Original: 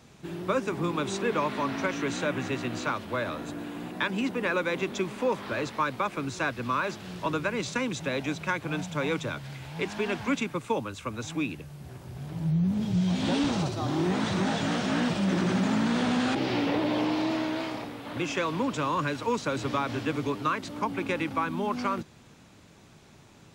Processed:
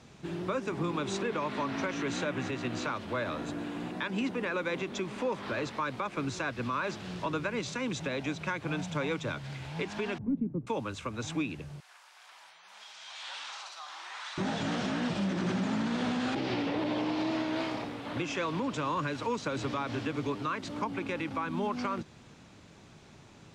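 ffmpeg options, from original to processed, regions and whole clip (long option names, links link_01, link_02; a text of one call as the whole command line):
ffmpeg -i in.wav -filter_complex "[0:a]asettb=1/sr,asplit=3[link_01][link_02][link_03];[link_01]atrim=end=10.184[link_04];[link_02]atrim=start=10.18:end=10.67,asetpts=PTS-STARTPTS,afade=type=in:duration=0.004:curve=qsin,afade=type=out:start_time=0.486:duration=0.004:curve=qsin,volume=24dB,asoftclip=hard,volume=-24dB,lowpass=frequency=260:width_type=q:width=1.5[link_05];[link_03]atrim=start=10.666[link_06];[link_04][link_05]acrossfade=duration=0.004:curve1=hsin:curve2=qsin[link_07];[link_07][link_06]acrossfade=duration=0.004:curve1=qsin:curve2=hsin,asettb=1/sr,asplit=3[link_08][link_09][link_10];[link_08]atrim=end=11.804[link_11];[link_09]atrim=start=11.8:end=14.38,asetpts=PTS-STARTPTS,afade=type=in:duration=0.004:curve=qsin,afade=type=out:start_time=2.576:duration=0.004:curve=qsin,highpass=frequency=990:width=0.5412,highpass=frequency=990:width=1.3066,acompressor=threshold=-49dB:ratio=1.5:attack=3.2:release=140:knee=1:detection=peak,asplit=2[link_12][link_13];[link_13]adelay=43,volume=-10.5dB[link_14];[link_12][link_14]amix=inputs=2:normalize=0,atrim=end_sample=113778[link_15];[link_10]atrim=start=14.376[link_16];[link_11][link_15]acrossfade=duration=0.004:curve1=hsin:curve2=qsin[link_17];[link_17][link_16]acrossfade=duration=0.004:curve1=qsin:curve2=hsin,lowpass=7800,alimiter=limit=-23dB:level=0:latency=1:release=182" out.wav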